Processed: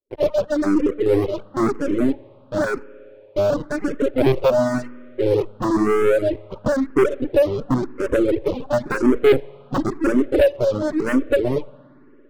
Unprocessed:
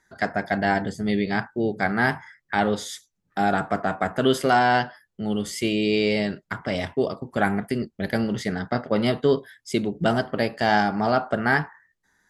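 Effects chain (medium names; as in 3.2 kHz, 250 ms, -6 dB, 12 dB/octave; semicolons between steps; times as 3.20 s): bit crusher 10-bit; dynamic bell 440 Hz, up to -5 dB, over -35 dBFS, Q 0.87; FFT band-pass 240–620 Hz; LPC vocoder at 8 kHz pitch kept; waveshaping leveller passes 5; spring tank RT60 2.7 s, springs 57 ms, chirp 30 ms, DRR 11.5 dB; reverb removal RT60 1.4 s; barber-pole phaser +0.97 Hz; trim +5 dB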